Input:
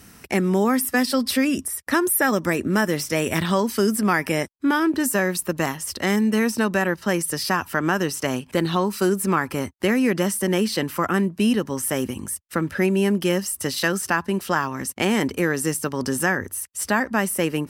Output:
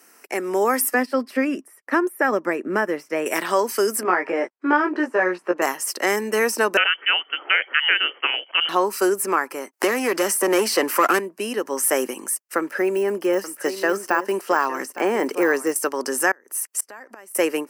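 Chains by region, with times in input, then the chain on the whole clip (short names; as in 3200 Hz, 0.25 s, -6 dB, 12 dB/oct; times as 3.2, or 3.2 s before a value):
0.94–3.26 tone controls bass +11 dB, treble -14 dB + upward expander, over -34 dBFS
4.03–5.62 de-esser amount 70% + BPF 120–2700 Hz + doubler 17 ms -3 dB
6.77–8.69 inverted band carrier 3200 Hz + HPF 250 Hz 24 dB/oct
9.73–11.19 sample leveller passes 2 + three-band squash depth 70%
12.58–15.76 de-esser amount 85% + echo 0.86 s -14 dB
16.31–17.35 flipped gate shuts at -16 dBFS, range -30 dB + upward compressor, threshold -35 dBFS
whole clip: bell 3600 Hz -12.5 dB 0.44 oct; AGC; HPF 350 Hz 24 dB/oct; gain -2.5 dB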